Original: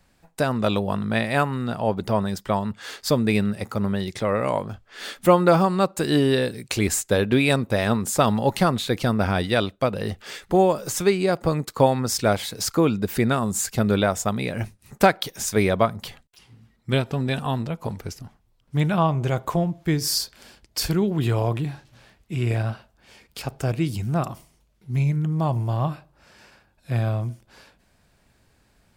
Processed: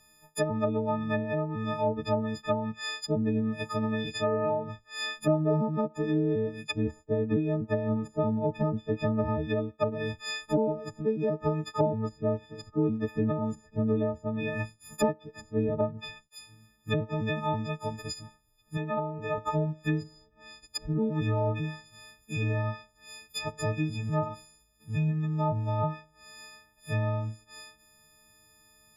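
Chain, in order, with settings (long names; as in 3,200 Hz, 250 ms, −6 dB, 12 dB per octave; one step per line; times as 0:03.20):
every partial snapped to a pitch grid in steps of 6 semitones
treble cut that deepens with the level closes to 460 Hz, closed at −14 dBFS
0:18.77–0:19.38: bass and treble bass −11 dB, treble −3 dB
level −6 dB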